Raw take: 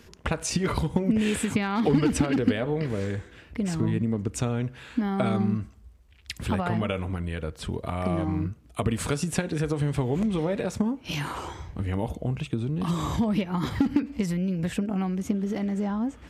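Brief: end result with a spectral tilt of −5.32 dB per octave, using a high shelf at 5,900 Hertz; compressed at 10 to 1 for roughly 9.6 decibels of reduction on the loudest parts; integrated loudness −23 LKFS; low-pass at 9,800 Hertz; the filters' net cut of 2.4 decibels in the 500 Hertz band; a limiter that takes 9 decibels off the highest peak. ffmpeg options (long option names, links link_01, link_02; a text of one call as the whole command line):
ffmpeg -i in.wav -af "lowpass=9800,equalizer=frequency=500:width_type=o:gain=-3,highshelf=frequency=5900:gain=9,acompressor=threshold=-28dB:ratio=10,volume=11dB,alimiter=limit=-13dB:level=0:latency=1" out.wav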